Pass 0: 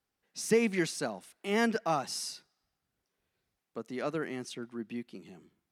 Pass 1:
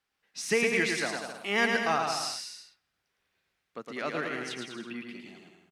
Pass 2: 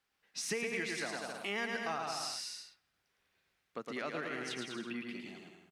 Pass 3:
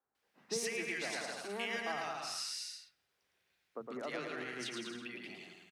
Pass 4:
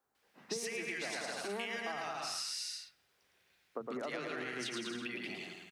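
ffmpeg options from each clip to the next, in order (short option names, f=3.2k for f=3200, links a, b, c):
-filter_complex "[0:a]equalizer=f=2.3k:w=0.42:g=11.5,asplit=2[a][b];[b]aecho=0:1:110|198|268.4|324.7|369.8:0.631|0.398|0.251|0.158|0.1[c];[a][c]amix=inputs=2:normalize=0,volume=-4.5dB"
-af "acompressor=threshold=-37dB:ratio=3"
-filter_complex "[0:a]lowshelf=f=67:g=-11,acrossover=split=210|1300[a][b][c];[a]adelay=40[d];[c]adelay=150[e];[d][b][e]amix=inputs=3:normalize=0"
-af "acompressor=threshold=-43dB:ratio=6,volume=6.5dB"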